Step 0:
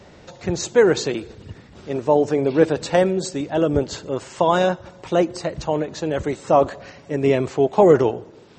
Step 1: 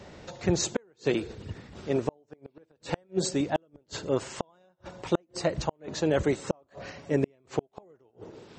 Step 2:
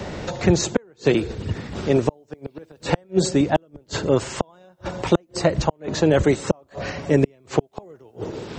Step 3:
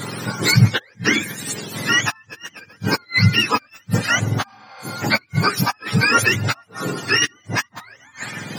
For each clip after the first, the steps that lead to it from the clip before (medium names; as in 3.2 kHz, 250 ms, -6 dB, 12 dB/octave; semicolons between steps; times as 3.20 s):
inverted gate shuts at -11 dBFS, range -42 dB; trim -1.5 dB
bass shelf 130 Hz +6 dB; three bands compressed up and down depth 40%; trim +8 dB
spectrum inverted on a logarithmic axis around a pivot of 880 Hz; spectral replace 4.51–4.89 s, 450–6100 Hz both; trim +5.5 dB